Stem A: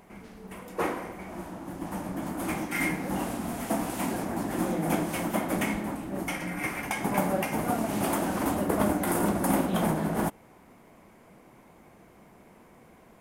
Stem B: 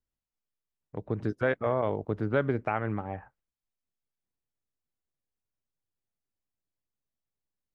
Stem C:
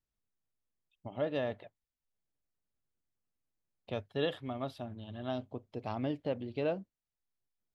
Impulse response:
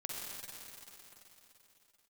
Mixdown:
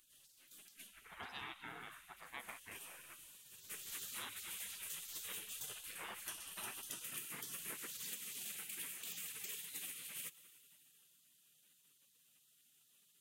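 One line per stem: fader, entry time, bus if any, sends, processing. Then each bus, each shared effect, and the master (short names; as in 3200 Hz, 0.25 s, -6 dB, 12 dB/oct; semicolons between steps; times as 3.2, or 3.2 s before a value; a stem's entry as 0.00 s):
+0.5 dB, 0.00 s, send -16 dB, HPF 810 Hz 12 dB/oct; bell 5200 Hz -6.5 dB 0.56 oct; auto duck -21 dB, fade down 0.25 s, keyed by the second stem
-4.5 dB, 0.00 s, send -17 dB, low shelf 370 Hz -10.5 dB
-3.5 dB, 0.00 s, send -4.5 dB, dry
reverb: on, RT60 3.6 s, pre-delay 43 ms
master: spectral gate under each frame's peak -20 dB weak; compressor, threshold -43 dBFS, peak gain reduction 8 dB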